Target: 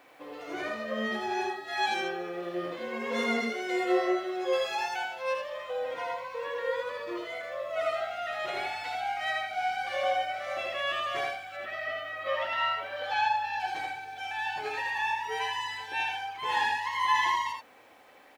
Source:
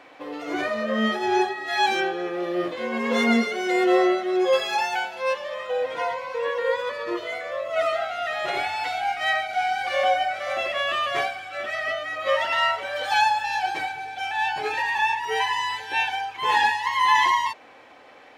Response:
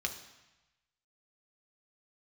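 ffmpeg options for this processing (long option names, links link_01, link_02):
-filter_complex "[0:a]asettb=1/sr,asplit=3[link_01][link_02][link_03];[link_01]atrim=end=11.564[link_04];[link_02]atrim=start=11.56:end=13.6,asetpts=PTS-STARTPTS,afade=type=in:duration=0.004:curve=qsin,afade=type=out:start_time=2.036:duration=0.004:curve=qsin,lowpass=3900[link_05];[link_03]atrim=start=13.596[link_06];[link_04][link_05]acrossfade=duration=0.004:curve1=hsin:curve2=qsin[link_07];[link_07][link_06]acrossfade=duration=0.004:curve1=qsin:curve2=hsin,acrusher=bits=9:mix=0:aa=0.000001,aecho=1:1:80:0.631,volume=-8.5dB"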